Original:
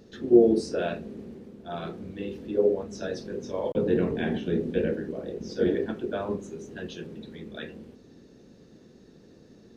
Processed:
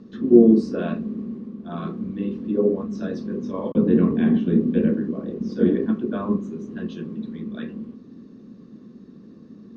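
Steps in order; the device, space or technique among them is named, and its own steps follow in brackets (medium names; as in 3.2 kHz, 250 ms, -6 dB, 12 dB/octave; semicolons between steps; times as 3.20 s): inside a cardboard box (low-pass 5.3 kHz 12 dB/octave; small resonant body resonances 220/1100 Hz, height 17 dB, ringing for 30 ms); trim -3.5 dB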